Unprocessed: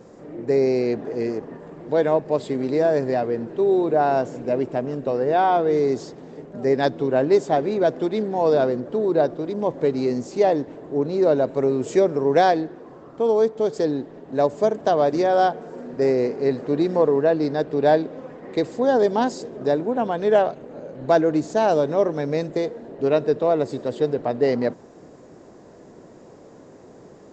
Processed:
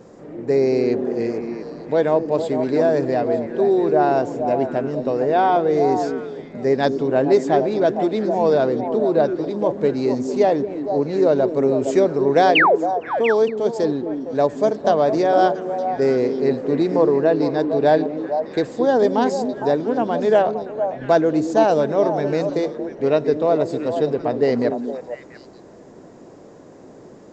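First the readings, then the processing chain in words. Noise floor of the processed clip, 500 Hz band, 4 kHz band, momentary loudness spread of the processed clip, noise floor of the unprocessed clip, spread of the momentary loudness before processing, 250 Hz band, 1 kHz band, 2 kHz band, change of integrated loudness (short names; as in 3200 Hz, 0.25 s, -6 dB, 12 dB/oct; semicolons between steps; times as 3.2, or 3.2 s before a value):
-43 dBFS, +2.5 dB, +4.5 dB, 7 LU, -46 dBFS, 9 LU, +3.0 dB, +3.0 dB, +6.0 dB, +2.5 dB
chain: painted sound fall, 12.55–12.76, 370–3200 Hz -15 dBFS; delay with a stepping band-pass 0.229 s, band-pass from 270 Hz, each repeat 1.4 oct, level -3 dB; gain +1.5 dB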